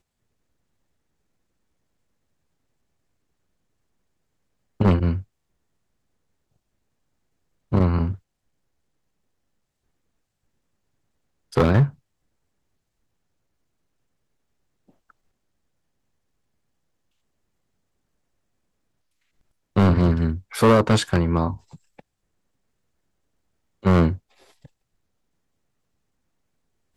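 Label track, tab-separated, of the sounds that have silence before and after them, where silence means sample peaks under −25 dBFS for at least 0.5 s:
4.800000	5.180000	sound
7.730000	8.120000	sound
11.570000	11.870000	sound
19.770000	21.530000	sound
23.850000	24.140000	sound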